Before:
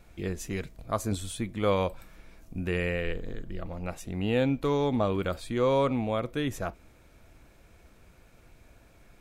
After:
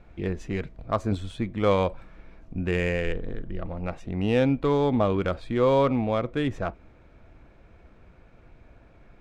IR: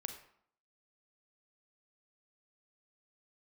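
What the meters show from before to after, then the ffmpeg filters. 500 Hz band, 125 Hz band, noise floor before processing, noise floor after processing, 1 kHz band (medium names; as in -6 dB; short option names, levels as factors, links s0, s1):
+4.0 dB, +4.0 dB, -58 dBFS, -55 dBFS, +3.5 dB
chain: -af "adynamicsmooth=sensitivity=2.5:basefreq=2700,volume=1.58"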